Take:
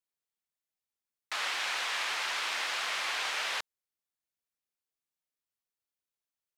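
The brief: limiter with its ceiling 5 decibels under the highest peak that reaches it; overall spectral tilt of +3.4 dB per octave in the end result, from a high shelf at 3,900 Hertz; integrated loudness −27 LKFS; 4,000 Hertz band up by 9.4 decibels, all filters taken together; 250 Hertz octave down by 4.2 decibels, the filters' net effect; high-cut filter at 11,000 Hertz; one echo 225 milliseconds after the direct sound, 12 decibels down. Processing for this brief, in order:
low-pass filter 11,000 Hz
parametric band 250 Hz −6.5 dB
high-shelf EQ 3,900 Hz +7.5 dB
parametric band 4,000 Hz +7.5 dB
brickwall limiter −19 dBFS
single-tap delay 225 ms −12 dB
level −0.5 dB

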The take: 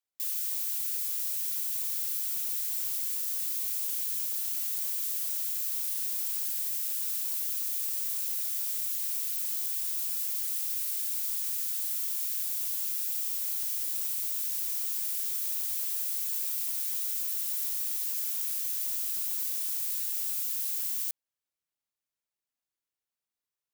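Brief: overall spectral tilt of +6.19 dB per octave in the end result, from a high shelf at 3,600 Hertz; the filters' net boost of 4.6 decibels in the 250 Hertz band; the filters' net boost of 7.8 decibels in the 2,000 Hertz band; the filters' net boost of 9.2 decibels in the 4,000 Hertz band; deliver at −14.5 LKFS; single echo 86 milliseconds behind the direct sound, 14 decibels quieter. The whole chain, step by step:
parametric band 250 Hz +6 dB
parametric band 2,000 Hz +6 dB
high-shelf EQ 3,600 Hz +3 dB
parametric band 4,000 Hz +8 dB
single-tap delay 86 ms −14 dB
level +10.5 dB

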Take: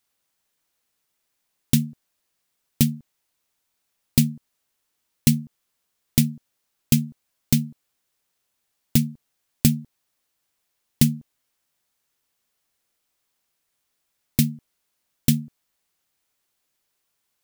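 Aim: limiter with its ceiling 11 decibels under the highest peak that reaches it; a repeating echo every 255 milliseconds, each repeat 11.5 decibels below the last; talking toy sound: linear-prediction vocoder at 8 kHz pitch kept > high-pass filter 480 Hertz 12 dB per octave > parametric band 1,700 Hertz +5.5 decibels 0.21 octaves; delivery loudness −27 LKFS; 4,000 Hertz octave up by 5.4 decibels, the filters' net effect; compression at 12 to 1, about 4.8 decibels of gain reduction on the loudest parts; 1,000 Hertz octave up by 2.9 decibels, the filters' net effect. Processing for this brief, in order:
parametric band 1,000 Hz +4 dB
parametric band 4,000 Hz +6.5 dB
downward compressor 12 to 1, threshold −16 dBFS
brickwall limiter −11.5 dBFS
repeating echo 255 ms, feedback 27%, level −11.5 dB
linear-prediction vocoder at 8 kHz pitch kept
high-pass filter 480 Hz 12 dB per octave
parametric band 1,700 Hz +5.5 dB 0.21 octaves
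level +18 dB

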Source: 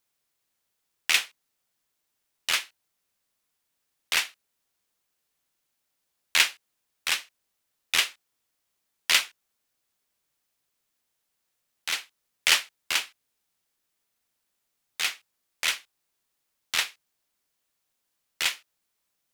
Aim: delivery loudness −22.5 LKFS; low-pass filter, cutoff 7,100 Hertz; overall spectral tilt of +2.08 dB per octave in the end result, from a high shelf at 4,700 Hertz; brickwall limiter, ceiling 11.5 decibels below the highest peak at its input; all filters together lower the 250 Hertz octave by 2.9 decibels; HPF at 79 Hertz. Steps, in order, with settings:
high-pass filter 79 Hz
low-pass filter 7,100 Hz
parametric band 250 Hz −4 dB
high-shelf EQ 4,700 Hz −8.5 dB
level +12.5 dB
brickwall limiter −7 dBFS

